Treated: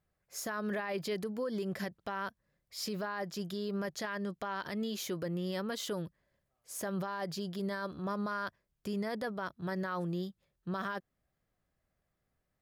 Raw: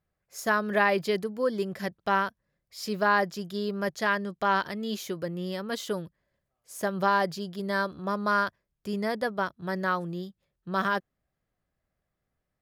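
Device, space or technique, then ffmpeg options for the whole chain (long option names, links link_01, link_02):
stacked limiters: -af "alimiter=limit=-17dB:level=0:latency=1:release=354,alimiter=limit=-22.5dB:level=0:latency=1:release=101,alimiter=level_in=4dB:limit=-24dB:level=0:latency=1:release=46,volume=-4dB"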